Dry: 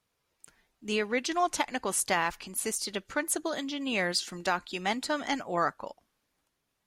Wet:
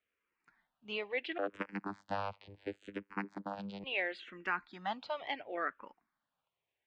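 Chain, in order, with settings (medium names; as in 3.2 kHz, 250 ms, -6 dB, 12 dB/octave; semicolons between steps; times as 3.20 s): low-pass 2.8 kHz 24 dB/octave; tilt EQ +2.5 dB/octave; 1.38–3.84 s: vocoder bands 8, saw 99.7 Hz; barber-pole phaser -0.72 Hz; trim -4 dB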